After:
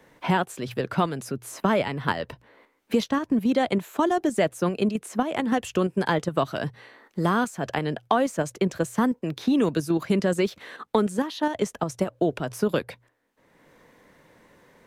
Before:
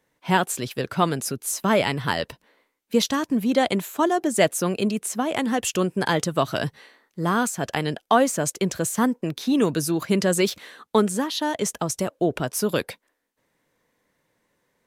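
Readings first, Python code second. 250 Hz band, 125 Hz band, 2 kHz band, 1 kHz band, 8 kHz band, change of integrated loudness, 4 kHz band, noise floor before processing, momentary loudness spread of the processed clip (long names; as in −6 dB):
−1.0 dB, −1.5 dB, −3.0 dB, −2.0 dB, −12.0 dB, −2.0 dB, −6.5 dB, −74 dBFS, 6 LU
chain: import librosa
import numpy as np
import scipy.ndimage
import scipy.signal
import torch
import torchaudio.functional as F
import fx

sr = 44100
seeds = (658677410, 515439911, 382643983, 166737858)

p1 = fx.hum_notches(x, sr, base_hz=60, count=2)
p2 = fx.level_steps(p1, sr, step_db=23)
p3 = p1 + (p2 * 10.0 ** (2.0 / 20.0))
p4 = fx.high_shelf(p3, sr, hz=3800.0, db=-9.5)
p5 = fx.band_squash(p4, sr, depth_pct=70)
y = p5 * 10.0 ** (-6.0 / 20.0)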